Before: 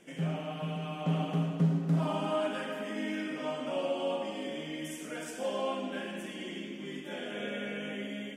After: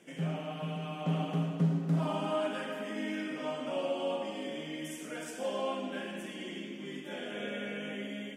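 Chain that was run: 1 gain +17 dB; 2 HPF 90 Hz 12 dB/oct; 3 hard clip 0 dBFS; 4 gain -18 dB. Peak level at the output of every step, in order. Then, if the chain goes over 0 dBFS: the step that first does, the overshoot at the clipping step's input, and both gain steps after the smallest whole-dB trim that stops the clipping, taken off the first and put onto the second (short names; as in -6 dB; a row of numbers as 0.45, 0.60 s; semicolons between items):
-1.0, -1.5, -1.5, -19.5 dBFS; no overload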